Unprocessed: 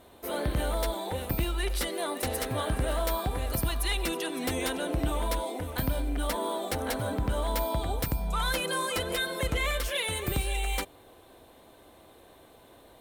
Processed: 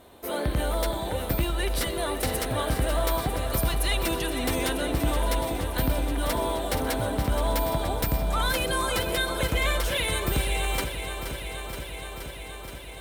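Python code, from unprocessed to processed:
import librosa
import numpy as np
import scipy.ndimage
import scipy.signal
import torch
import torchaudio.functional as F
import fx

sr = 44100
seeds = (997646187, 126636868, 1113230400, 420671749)

y = fx.echo_crushed(x, sr, ms=474, feedback_pct=80, bits=10, wet_db=-9.5)
y = y * 10.0 ** (2.5 / 20.0)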